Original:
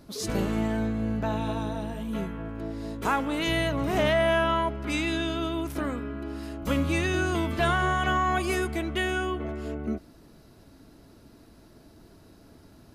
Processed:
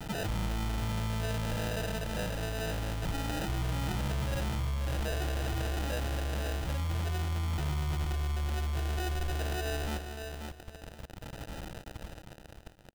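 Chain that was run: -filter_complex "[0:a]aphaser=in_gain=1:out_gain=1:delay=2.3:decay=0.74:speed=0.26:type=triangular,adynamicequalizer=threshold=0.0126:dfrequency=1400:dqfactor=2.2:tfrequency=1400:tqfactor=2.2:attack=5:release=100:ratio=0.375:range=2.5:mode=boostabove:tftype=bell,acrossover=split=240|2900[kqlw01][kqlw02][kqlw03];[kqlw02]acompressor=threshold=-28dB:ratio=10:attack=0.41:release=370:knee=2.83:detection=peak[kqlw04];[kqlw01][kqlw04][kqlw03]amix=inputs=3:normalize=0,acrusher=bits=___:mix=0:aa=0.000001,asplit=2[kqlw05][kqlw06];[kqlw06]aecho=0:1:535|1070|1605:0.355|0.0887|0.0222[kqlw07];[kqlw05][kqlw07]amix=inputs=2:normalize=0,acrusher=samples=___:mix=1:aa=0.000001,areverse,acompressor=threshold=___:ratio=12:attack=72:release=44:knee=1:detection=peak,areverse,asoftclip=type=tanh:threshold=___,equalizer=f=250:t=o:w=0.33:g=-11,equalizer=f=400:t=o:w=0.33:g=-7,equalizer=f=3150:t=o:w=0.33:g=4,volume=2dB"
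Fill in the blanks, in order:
6, 40, -34dB, -27.5dB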